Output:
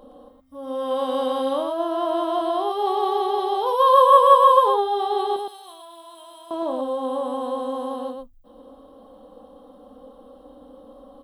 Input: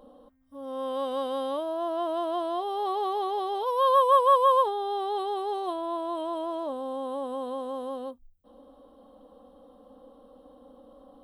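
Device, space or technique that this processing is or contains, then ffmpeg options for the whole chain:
slapback doubling: -filter_complex "[0:a]asettb=1/sr,asplit=3[link_01][link_02][link_03];[link_01]atrim=end=5.364[link_04];[link_02]atrim=start=5.36:end=6.51,asetpts=PTS-STARTPTS,afade=type=in:duration=0.004:curve=qsin,afade=type=out:start_time=1.146:duration=0.004:curve=qsin,aderivative[link_05];[link_03]atrim=start=6.506[link_06];[link_04][link_05]acrossfade=duration=0.004:curve1=hsin:curve2=qsin[link_07];[link_07][link_06]acrossfade=duration=0.004:curve1=qsin:curve2=hsin,asplit=3[link_08][link_09][link_10];[link_09]adelay=27,volume=-8dB[link_11];[link_10]adelay=116,volume=-4.5dB[link_12];[link_08][link_11][link_12]amix=inputs=3:normalize=0,volume=5dB"

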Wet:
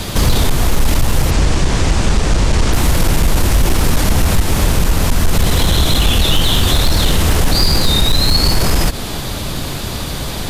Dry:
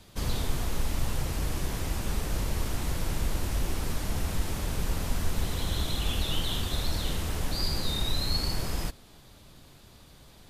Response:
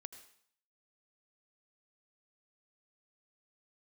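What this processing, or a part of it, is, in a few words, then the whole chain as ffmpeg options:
loud club master: -filter_complex "[0:a]acompressor=threshold=-32dB:ratio=2,asoftclip=type=hard:threshold=-27dB,alimiter=level_in=35.5dB:limit=-1dB:release=50:level=0:latency=1,asplit=3[link_01][link_02][link_03];[link_01]afade=type=out:start_time=1.3:duration=0.02[link_04];[link_02]lowpass=frequency=8200:width=0.5412,lowpass=frequency=8200:width=1.3066,afade=type=in:start_time=1.3:duration=0.02,afade=type=out:start_time=2.72:duration=0.02[link_05];[link_03]afade=type=in:start_time=2.72:duration=0.02[link_06];[link_04][link_05][link_06]amix=inputs=3:normalize=0,volume=-4.5dB"

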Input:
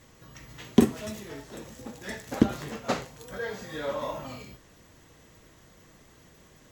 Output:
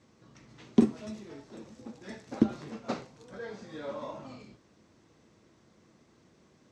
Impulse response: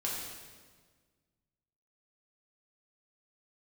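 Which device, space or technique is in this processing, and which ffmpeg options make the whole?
car door speaker: -af "highpass=86,equalizer=frequency=220:width_type=q:width=4:gain=6,equalizer=frequency=340:width_type=q:width=4:gain=5,equalizer=frequency=1800:width_type=q:width=4:gain=-5,equalizer=frequency=3100:width_type=q:width=4:gain=-5,equalizer=frequency=7000:width_type=q:width=4:gain=-6,lowpass=frequency=7500:width=0.5412,lowpass=frequency=7500:width=1.3066,volume=-7dB"

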